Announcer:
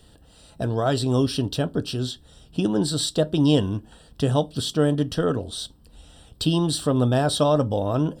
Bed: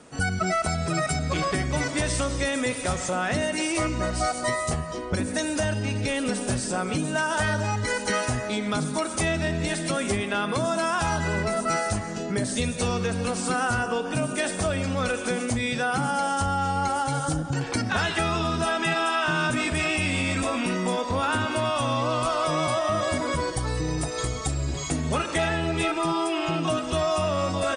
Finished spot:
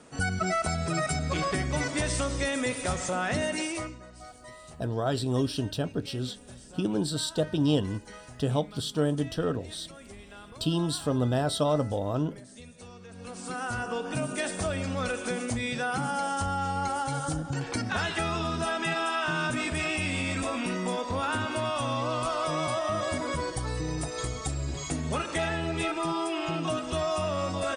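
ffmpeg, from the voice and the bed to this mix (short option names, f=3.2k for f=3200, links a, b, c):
-filter_complex "[0:a]adelay=4200,volume=-6dB[a];[1:a]volume=14dB,afade=t=out:st=3.53:d=0.47:silence=0.11885,afade=t=in:st=13.07:d=1.01:silence=0.141254[b];[a][b]amix=inputs=2:normalize=0"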